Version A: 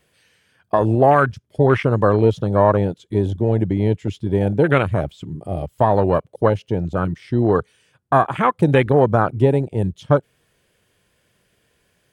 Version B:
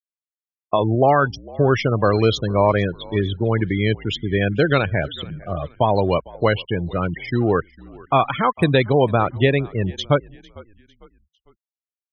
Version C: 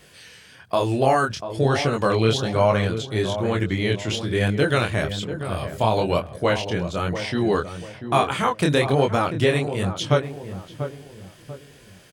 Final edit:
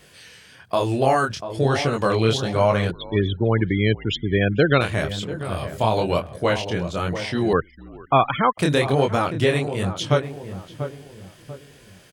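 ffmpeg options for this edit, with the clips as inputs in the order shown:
-filter_complex "[1:a]asplit=2[a][b];[2:a]asplit=3[c][d][e];[c]atrim=end=2.912[f];[a]atrim=start=2.908:end=4.812[g];[d]atrim=start=4.808:end=7.532[h];[b]atrim=start=7.528:end=8.582[i];[e]atrim=start=8.578[j];[f][g]acrossfade=d=0.004:c1=hsin:c2=hsin[k];[k][h]acrossfade=d=0.004:c1=hsin:c2=hsin[l];[l][i]acrossfade=d=0.004:c1=hsin:c2=hsin[m];[m][j]acrossfade=d=0.004:c1=hsin:c2=hsin"

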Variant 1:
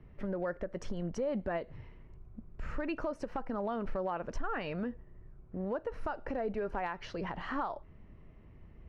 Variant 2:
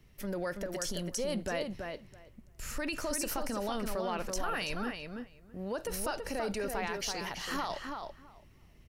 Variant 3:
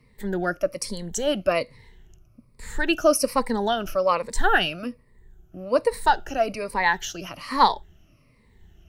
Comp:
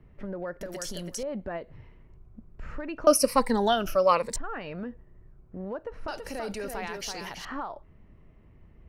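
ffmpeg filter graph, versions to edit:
-filter_complex "[1:a]asplit=2[a][b];[0:a]asplit=4[c][d][e][f];[c]atrim=end=0.612[g];[a]atrim=start=0.608:end=1.232[h];[d]atrim=start=1.228:end=3.072[i];[2:a]atrim=start=3.068:end=4.362[j];[e]atrim=start=4.358:end=6.082[k];[b]atrim=start=6.078:end=7.452[l];[f]atrim=start=7.448[m];[g][h]acrossfade=d=0.004:c1=hsin:c2=hsin[n];[n][i]acrossfade=d=0.004:c1=hsin:c2=hsin[o];[o][j]acrossfade=d=0.004:c1=hsin:c2=hsin[p];[p][k]acrossfade=d=0.004:c1=hsin:c2=hsin[q];[q][l]acrossfade=d=0.004:c1=hsin:c2=hsin[r];[r][m]acrossfade=d=0.004:c1=hsin:c2=hsin"

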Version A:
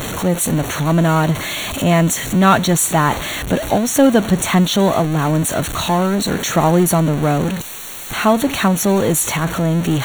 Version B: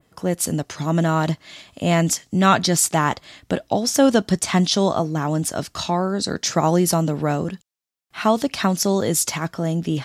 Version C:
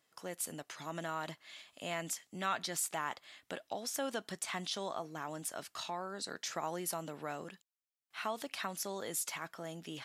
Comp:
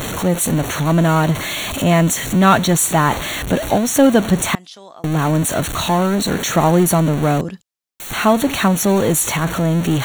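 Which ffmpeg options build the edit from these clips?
-filter_complex "[0:a]asplit=3[a][b][c];[a]atrim=end=4.552[d];[2:a]atrim=start=4.548:end=5.042[e];[b]atrim=start=5.038:end=7.412[f];[1:a]atrim=start=7.408:end=8.002[g];[c]atrim=start=7.998[h];[d][e]acrossfade=d=0.004:c1=hsin:c2=hsin[i];[i][f]acrossfade=d=0.004:c1=hsin:c2=hsin[j];[j][g]acrossfade=d=0.004:c1=hsin:c2=hsin[k];[k][h]acrossfade=d=0.004:c1=hsin:c2=hsin"

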